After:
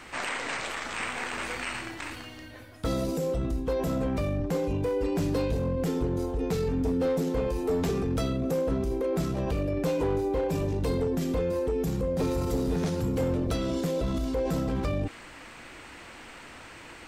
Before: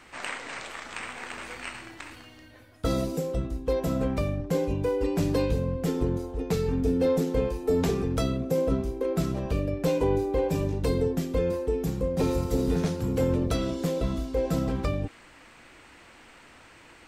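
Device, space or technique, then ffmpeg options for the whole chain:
clipper into limiter: -af "asoftclip=type=hard:threshold=0.1,alimiter=level_in=1.58:limit=0.0631:level=0:latency=1:release=17,volume=0.631,volume=2"

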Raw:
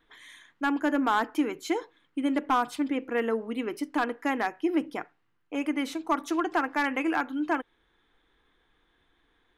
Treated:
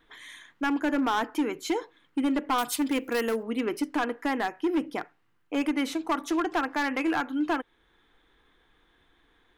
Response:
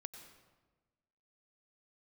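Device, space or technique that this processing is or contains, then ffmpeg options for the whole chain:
limiter into clipper: -filter_complex "[0:a]alimiter=limit=0.0944:level=0:latency=1:release=394,asoftclip=type=hard:threshold=0.0562,asettb=1/sr,asplit=3[s0][s1][s2];[s0]atrim=end=2.584[s3];[s1]atrim=start=2.58:end=3.43,asetpts=PTS-STARTPTS,afade=t=in:d=0.004:c=qsin,afade=t=out:st=0.846:d=0.004:c=qsin,aemphasis=mode=production:type=75fm[s4];[s2]atrim=start=3.426[s5];[s3][s4]acrossfade=d=0.004:c1=hsin:c2=qsin[s6];[s6][s5]acrossfade=d=0.004:c1=qsin:c2=hsin,volume=1.58"

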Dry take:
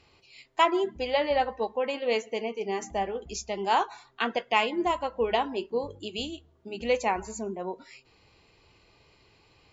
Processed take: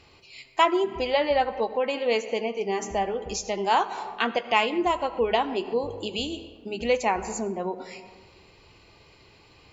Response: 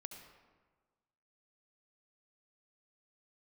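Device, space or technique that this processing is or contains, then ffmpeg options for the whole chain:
ducked reverb: -filter_complex "[0:a]asplit=3[s0][s1][s2];[1:a]atrim=start_sample=2205[s3];[s1][s3]afir=irnorm=-1:irlink=0[s4];[s2]apad=whole_len=428840[s5];[s4][s5]sidechaincompress=threshold=0.0126:ratio=5:attack=35:release=143,volume=1.5[s6];[s0][s6]amix=inputs=2:normalize=0,volume=1.12"

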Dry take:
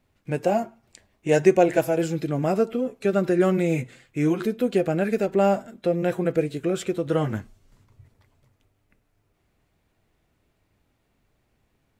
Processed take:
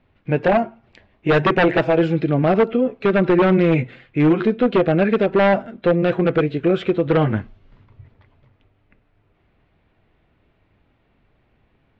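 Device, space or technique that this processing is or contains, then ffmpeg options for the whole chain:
synthesiser wavefolder: -af "aeval=exprs='0.158*(abs(mod(val(0)/0.158+3,4)-2)-1)':c=same,lowpass=f=3400:w=0.5412,lowpass=f=3400:w=1.3066,volume=2.37"

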